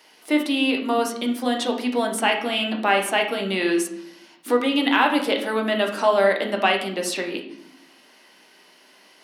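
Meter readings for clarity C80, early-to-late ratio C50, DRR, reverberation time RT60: 11.5 dB, 8.0 dB, 2.0 dB, 0.70 s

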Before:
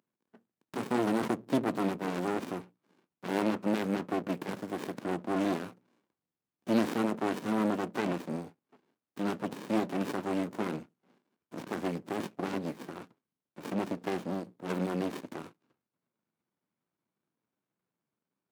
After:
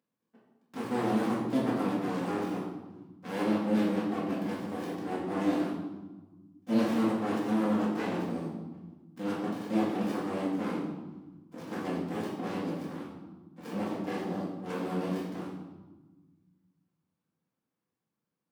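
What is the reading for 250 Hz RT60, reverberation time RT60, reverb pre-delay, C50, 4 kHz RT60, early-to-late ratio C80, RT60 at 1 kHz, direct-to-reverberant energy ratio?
2.1 s, 1.2 s, 4 ms, 2.0 dB, 0.85 s, 5.0 dB, 1.2 s, −8.0 dB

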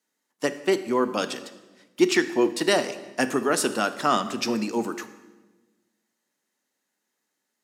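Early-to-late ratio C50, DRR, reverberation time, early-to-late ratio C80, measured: 13.0 dB, 10.5 dB, 1.2 s, 14.5 dB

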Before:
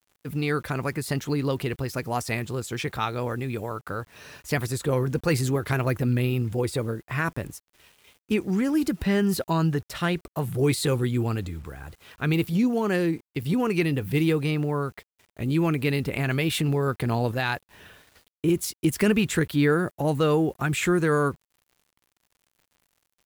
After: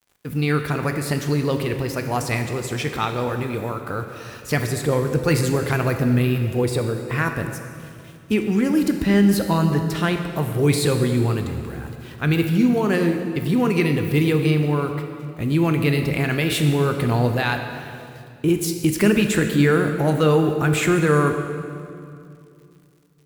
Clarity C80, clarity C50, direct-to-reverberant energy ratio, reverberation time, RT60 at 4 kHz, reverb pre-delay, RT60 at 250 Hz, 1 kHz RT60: 7.5 dB, 6.5 dB, 5.5 dB, 2.5 s, 2.0 s, 16 ms, 3.1 s, 2.4 s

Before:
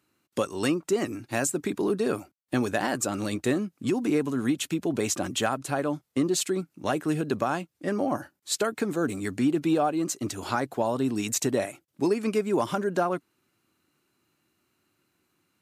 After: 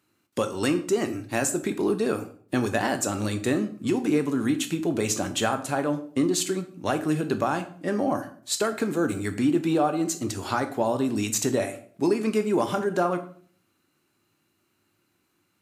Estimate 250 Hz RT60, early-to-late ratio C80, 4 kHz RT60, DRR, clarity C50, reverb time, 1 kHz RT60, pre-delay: 0.65 s, 16.5 dB, 0.40 s, 8.0 dB, 13.0 dB, 0.50 s, 0.45 s, 13 ms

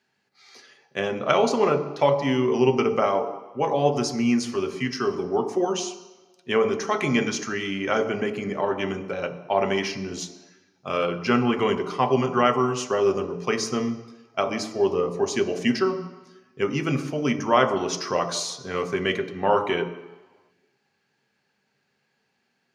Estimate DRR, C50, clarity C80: 6.0 dB, 10.0 dB, 12.5 dB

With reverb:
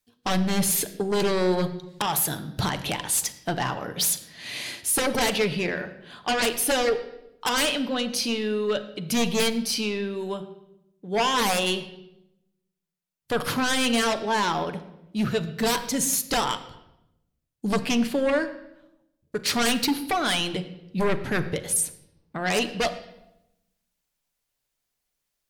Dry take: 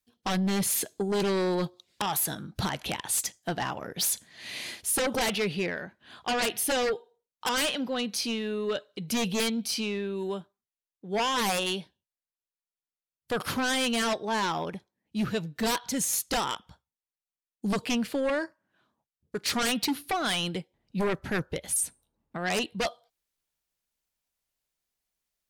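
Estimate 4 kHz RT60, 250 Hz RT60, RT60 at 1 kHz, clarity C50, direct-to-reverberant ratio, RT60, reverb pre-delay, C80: 0.70 s, 1.1 s, 0.80 s, 13.0 dB, 8.0 dB, 0.90 s, 7 ms, 14.5 dB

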